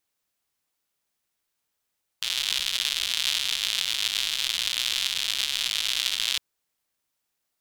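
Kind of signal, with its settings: rain from filtered ticks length 4.16 s, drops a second 160, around 3.4 kHz, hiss -26 dB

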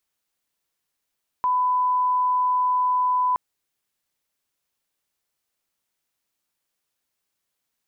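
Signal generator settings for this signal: line-up tone -18 dBFS 1.92 s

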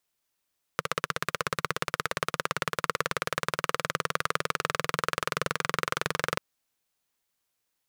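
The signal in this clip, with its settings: single-cylinder engine model, changing speed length 5.59 s, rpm 1900, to 2700, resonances 160/490/1200 Hz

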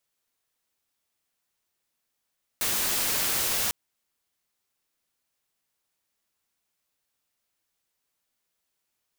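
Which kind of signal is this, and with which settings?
noise white, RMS -26.5 dBFS 1.10 s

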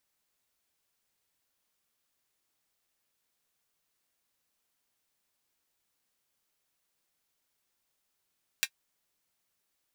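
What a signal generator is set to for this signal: closed hi-hat, high-pass 2 kHz, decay 0.07 s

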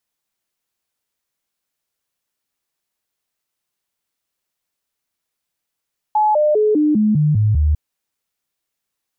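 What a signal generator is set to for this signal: stepped sine 852 Hz down, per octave 2, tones 8, 0.20 s, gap 0.00 s -11.5 dBFS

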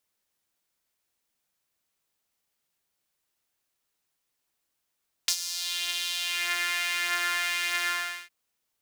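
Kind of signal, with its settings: synth patch with filter wobble F4, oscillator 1 saw, oscillator 2 saw, sub -12.5 dB, noise -26.5 dB, filter highpass, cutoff 1.8 kHz, Q 2.1, filter envelope 1.5 oct, filter decay 1.50 s, filter sustain 5%, attack 4.9 ms, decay 0.07 s, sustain -11.5 dB, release 0.41 s, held 2.60 s, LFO 1.4 Hz, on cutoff 0.2 oct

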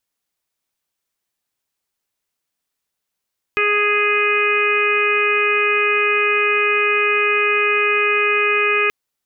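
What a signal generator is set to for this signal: steady additive tone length 5.33 s, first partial 415 Hz, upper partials -20/-1/-3.5/-2/3/-13 dB, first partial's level -20.5 dB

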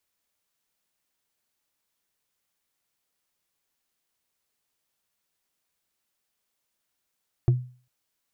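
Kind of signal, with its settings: wood hit, length 0.40 s, lowest mode 125 Hz, decay 0.40 s, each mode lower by 10 dB, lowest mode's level -13 dB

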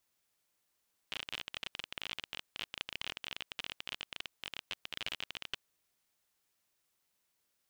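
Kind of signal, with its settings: random clicks 31 per s -22 dBFS 4.55 s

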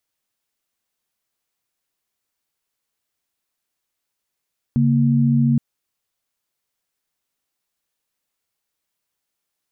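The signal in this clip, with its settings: chord C#3/A#3 sine, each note -16 dBFS 0.82 s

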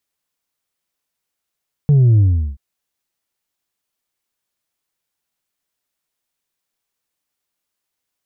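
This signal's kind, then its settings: sub drop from 150 Hz, over 0.68 s, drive 2.5 dB, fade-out 0.38 s, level -8.5 dB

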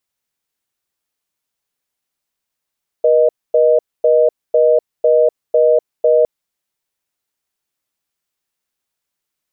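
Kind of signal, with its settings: call progress tone reorder tone, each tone -11 dBFS 3.21 s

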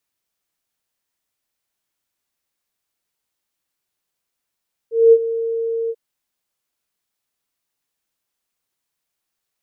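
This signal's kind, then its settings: ADSR sine 457 Hz, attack 214 ms, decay 53 ms, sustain -14.5 dB, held 0.99 s, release 48 ms -4.5 dBFS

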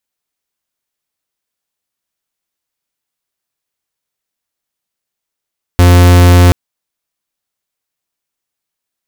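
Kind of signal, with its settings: pulse 88.4 Hz, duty 44% -4.5 dBFS 0.73 s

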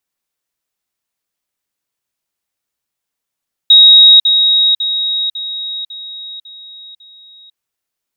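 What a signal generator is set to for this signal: level ladder 3.79 kHz -1.5 dBFS, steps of -6 dB, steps 7, 0.50 s 0.05 s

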